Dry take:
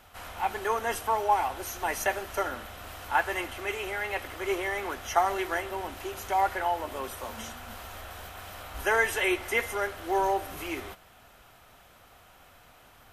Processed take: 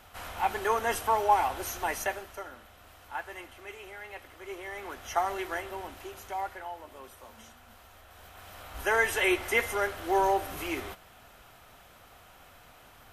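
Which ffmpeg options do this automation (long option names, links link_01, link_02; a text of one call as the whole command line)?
ffmpeg -i in.wav -af "volume=21.5dB,afade=type=out:start_time=1.68:duration=0.72:silence=0.237137,afade=type=in:start_time=4.53:duration=0.64:silence=0.421697,afade=type=out:start_time=5.71:duration=0.95:silence=0.398107,afade=type=in:start_time=8.07:duration=1.22:silence=0.223872" out.wav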